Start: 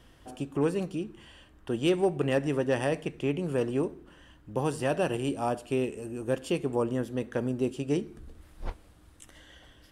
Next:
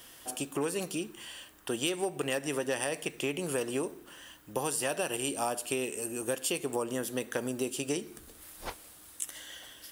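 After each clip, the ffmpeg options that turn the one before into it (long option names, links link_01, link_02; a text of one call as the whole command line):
ffmpeg -i in.wav -af "aemphasis=mode=production:type=riaa,acompressor=threshold=-32dB:ratio=6,volume=4dB" out.wav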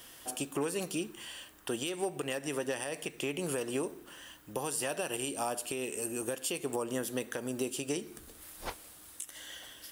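ffmpeg -i in.wav -af "alimiter=limit=-22dB:level=0:latency=1:release=227" out.wav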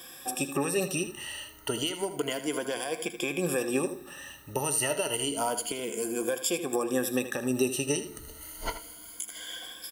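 ffmpeg -i in.wav -af "afftfilt=real='re*pow(10,16/40*sin(2*PI*(1.8*log(max(b,1)*sr/1024/100)/log(2)-(0.3)*(pts-256)/sr)))':imag='im*pow(10,16/40*sin(2*PI*(1.8*log(max(b,1)*sr/1024/100)/log(2)-(0.3)*(pts-256)/sr)))':win_size=1024:overlap=0.75,aecho=1:1:79:0.266,volume=2.5dB" out.wav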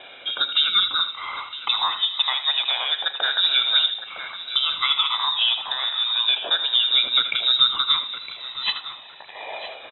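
ffmpeg -i in.wav -filter_complex "[0:a]lowpass=frequency=3400:width_type=q:width=0.5098,lowpass=frequency=3400:width_type=q:width=0.6013,lowpass=frequency=3400:width_type=q:width=0.9,lowpass=frequency=3400:width_type=q:width=2.563,afreqshift=-4000,asplit=2[link_01][link_02];[link_02]adelay=961,lowpass=frequency=2100:poles=1,volume=-10dB,asplit=2[link_03][link_04];[link_04]adelay=961,lowpass=frequency=2100:poles=1,volume=0.31,asplit=2[link_05][link_06];[link_06]adelay=961,lowpass=frequency=2100:poles=1,volume=0.31[link_07];[link_01][link_03][link_05][link_07]amix=inputs=4:normalize=0,volume=9dB" out.wav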